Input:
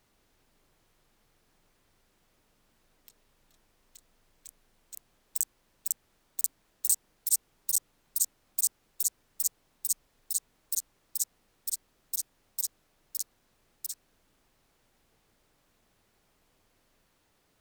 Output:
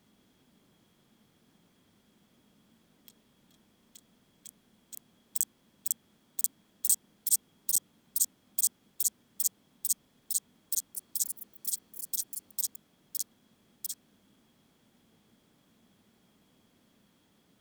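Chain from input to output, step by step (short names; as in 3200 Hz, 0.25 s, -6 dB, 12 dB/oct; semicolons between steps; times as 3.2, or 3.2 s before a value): HPF 57 Hz; small resonant body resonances 210/3300 Hz, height 14 dB, ringing for 30 ms; 10.74–13.16 echoes that change speed 0.207 s, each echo +5 st, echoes 3, each echo -6 dB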